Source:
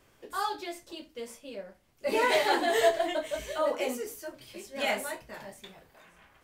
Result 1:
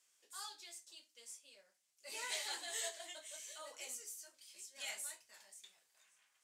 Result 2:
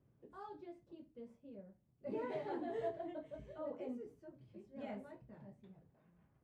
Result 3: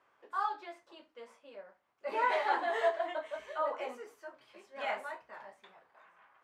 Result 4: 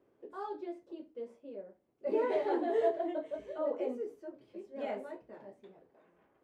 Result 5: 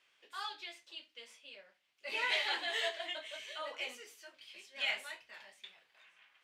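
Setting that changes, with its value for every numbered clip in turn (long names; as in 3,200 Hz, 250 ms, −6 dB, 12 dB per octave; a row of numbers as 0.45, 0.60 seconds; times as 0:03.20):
resonant band-pass, frequency: 7,500, 140, 1,100, 370, 2,900 Hertz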